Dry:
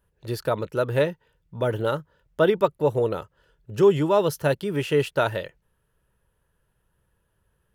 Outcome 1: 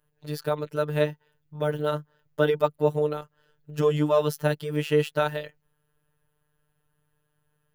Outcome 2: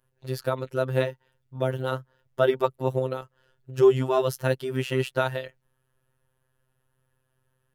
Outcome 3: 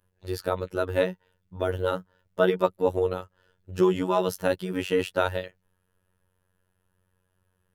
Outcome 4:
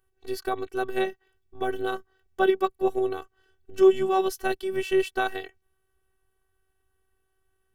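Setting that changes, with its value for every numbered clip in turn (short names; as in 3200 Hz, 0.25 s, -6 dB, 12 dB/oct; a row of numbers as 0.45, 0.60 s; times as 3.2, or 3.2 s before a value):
robotiser, frequency: 150, 130, 92, 380 Hz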